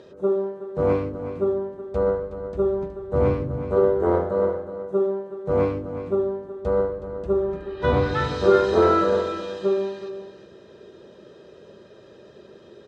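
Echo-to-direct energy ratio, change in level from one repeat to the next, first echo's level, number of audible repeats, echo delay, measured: -11.5 dB, no regular repeats, -11.5 dB, 1, 370 ms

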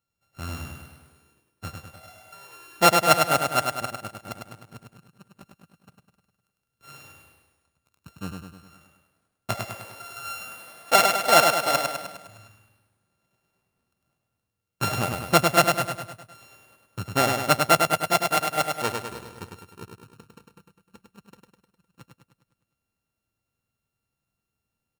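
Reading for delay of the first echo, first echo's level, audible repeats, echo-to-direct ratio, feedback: 102 ms, -4.5 dB, 6, -3.0 dB, 55%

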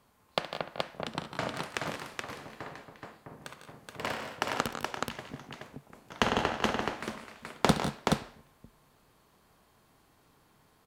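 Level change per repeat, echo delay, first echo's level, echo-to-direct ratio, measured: no regular repeats, 69 ms, -14.0 dB, -1.5 dB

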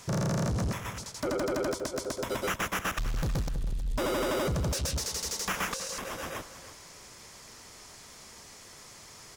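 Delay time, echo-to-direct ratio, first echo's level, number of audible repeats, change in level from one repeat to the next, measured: 319 ms, -13.5 dB, -14.0 dB, 2, -12.5 dB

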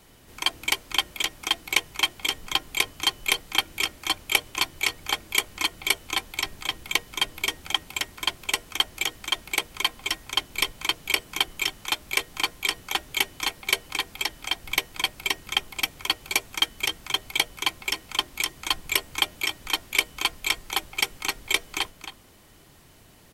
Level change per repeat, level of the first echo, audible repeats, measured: no regular repeats, -10.5 dB, 1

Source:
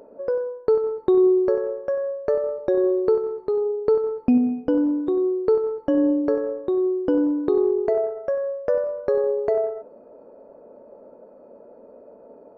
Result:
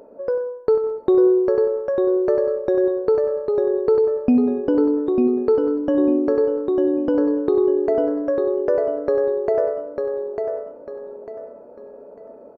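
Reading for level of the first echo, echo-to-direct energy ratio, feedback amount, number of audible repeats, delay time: -5.0 dB, -4.5 dB, 33%, 4, 898 ms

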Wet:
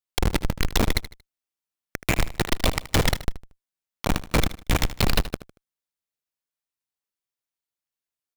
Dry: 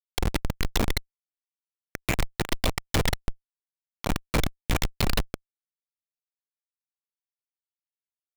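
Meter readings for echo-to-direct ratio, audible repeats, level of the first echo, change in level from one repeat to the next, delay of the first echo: -14.0 dB, 3, -14.5 dB, -9.5 dB, 77 ms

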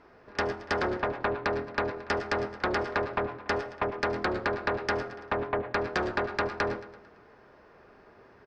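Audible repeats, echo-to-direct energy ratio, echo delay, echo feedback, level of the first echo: 4, -14.0 dB, 112 ms, 50%, -15.0 dB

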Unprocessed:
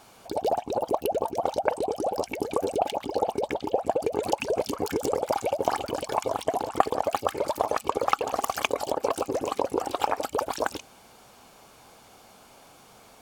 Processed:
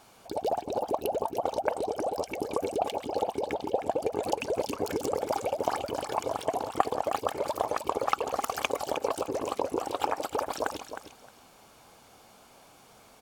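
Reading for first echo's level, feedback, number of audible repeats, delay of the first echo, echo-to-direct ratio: -9.5 dB, 17%, 2, 311 ms, -9.5 dB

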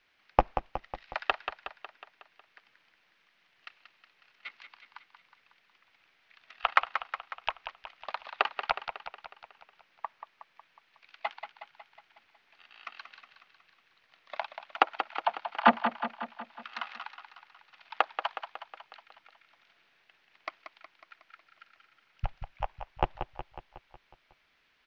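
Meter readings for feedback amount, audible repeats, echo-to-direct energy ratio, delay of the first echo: 59%, 6, -7.0 dB, 183 ms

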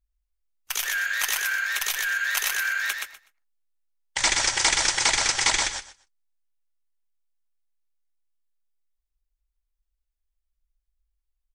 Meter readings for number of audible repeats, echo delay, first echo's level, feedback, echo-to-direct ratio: 3, 124 ms, -4.0 dB, 18%, -4.0 dB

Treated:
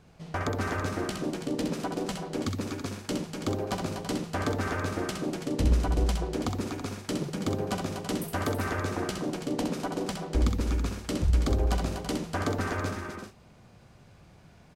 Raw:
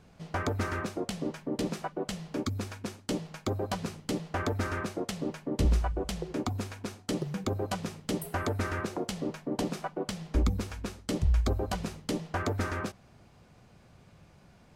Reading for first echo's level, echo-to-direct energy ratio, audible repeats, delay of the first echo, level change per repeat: -5.0 dB, -1.0 dB, 5, 65 ms, no regular repeats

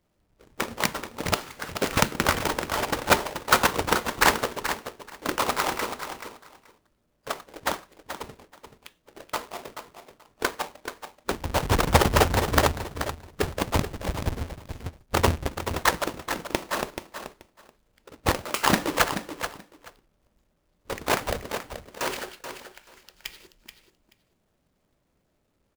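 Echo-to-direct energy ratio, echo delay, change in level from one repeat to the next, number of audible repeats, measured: -9.5 dB, 431 ms, -16.0 dB, 2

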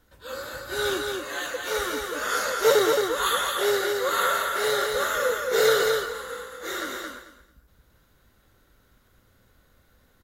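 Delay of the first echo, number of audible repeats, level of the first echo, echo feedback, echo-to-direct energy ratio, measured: 221 ms, 3, -4.0 dB, 20%, -4.0 dB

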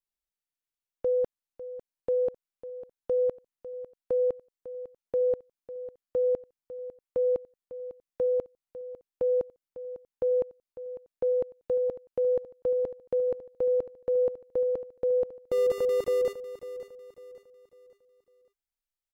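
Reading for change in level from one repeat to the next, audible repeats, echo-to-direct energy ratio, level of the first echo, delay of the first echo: -8.5 dB, 3, -13.5 dB, -14.0 dB, 550 ms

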